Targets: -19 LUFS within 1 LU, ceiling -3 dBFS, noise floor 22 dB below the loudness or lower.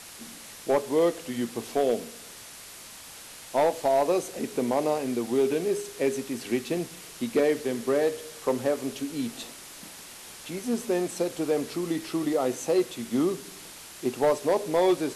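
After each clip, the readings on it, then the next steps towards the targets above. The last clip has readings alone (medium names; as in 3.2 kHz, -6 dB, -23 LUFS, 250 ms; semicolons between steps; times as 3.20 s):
clipped samples 0.5%; clipping level -16.0 dBFS; noise floor -45 dBFS; noise floor target -50 dBFS; loudness -27.5 LUFS; peak level -16.0 dBFS; loudness target -19.0 LUFS
-> clip repair -16 dBFS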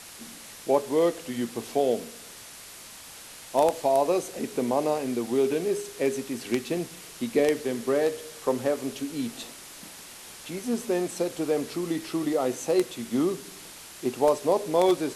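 clipped samples 0.0%; noise floor -45 dBFS; noise floor target -49 dBFS
-> noise reduction 6 dB, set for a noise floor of -45 dBFS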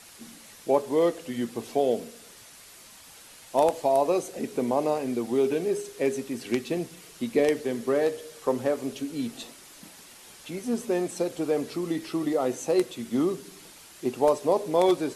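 noise floor -50 dBFS; loudness -27.0 LUFS; peak level -7.5 dBFS; loudness target -19.0 LUFS
-> trim +8 dB; peak limiter -3 dBFS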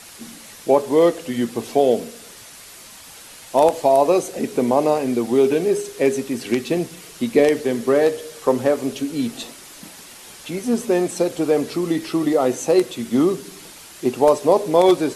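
loudness -19.5 LUFS; peak level -3.0 dBFS; noise floor -42 dBFS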